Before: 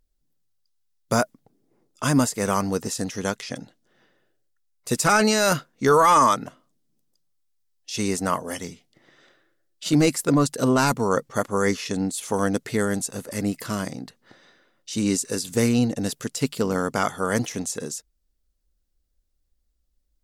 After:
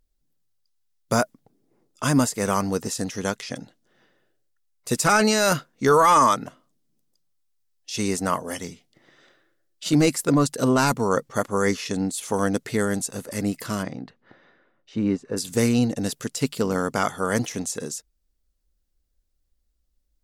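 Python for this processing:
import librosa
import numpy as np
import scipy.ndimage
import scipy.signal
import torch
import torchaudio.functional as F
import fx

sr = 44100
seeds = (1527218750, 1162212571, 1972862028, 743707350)

y = fx.lowpass(x, sr, hz=fx.line((13.82, 3200.0), (15.36, 1400.0)), slope=12, at=(13.82, 15.36), fade=0.02)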